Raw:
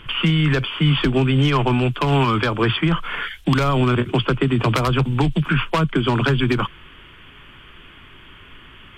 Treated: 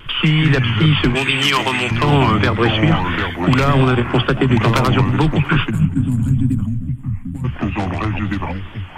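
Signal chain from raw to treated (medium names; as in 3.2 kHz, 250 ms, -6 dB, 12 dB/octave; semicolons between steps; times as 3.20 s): ever faster or slower copies 120 ms, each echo -4 st, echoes 2, each echo -6 dB; 1.15–1.91 s: tilt EQ +4.5 dB/octave; 5.71–7.45 s: time-frequency box 300–6800 Hz -26 dB; on a send: filtered feedback delay 232 ms, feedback 50%, low-pass 3.7 kHz, level -19 dB; on the sum: wow and flutter 60 cents; trim +3 dB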